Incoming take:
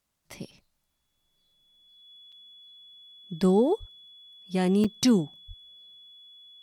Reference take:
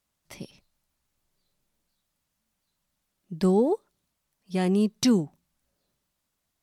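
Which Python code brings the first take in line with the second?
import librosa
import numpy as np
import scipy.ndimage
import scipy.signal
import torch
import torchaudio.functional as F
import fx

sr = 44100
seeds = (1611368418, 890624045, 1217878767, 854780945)

y = fx.notch(x, sr, hz=3400.0, q=30.0)
y = fx.highpass(y, sr, hz=140.0, slope=24, at=(3.79, 3.91), fade=0.02)
y = fx.highpass(y, sr, hz=140.0, slope=24, at=(5.47, 5.59), fade=0.02)
y = fx.fix_interpolate(y, sr, at_s=(2.32, 4.84), length_ms=5.1)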